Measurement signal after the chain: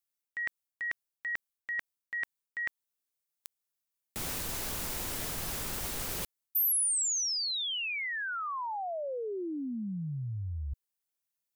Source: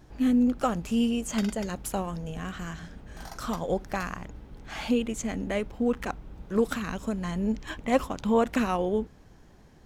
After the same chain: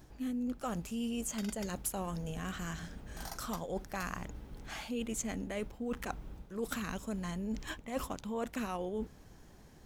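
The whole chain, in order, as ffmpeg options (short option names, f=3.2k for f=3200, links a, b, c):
-af "areverse,acompressor=threshold=-32dB:ratio=6,areverse,highshelf=f=6.7k:g=10,volume=-2.5dB"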